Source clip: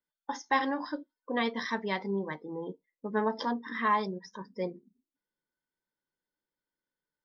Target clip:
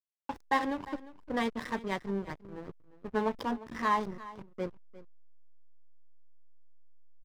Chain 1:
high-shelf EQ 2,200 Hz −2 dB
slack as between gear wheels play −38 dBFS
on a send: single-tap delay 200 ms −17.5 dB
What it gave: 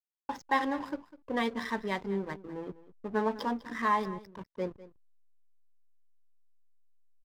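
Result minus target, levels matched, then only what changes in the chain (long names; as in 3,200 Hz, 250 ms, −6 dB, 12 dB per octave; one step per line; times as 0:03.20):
echo 152 ms early; slack as between gear wheels: distortion −7 dB
change: slack as between gear wheels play −30.5 dBFS
change: single-tap delay 352 ms −17.5 dB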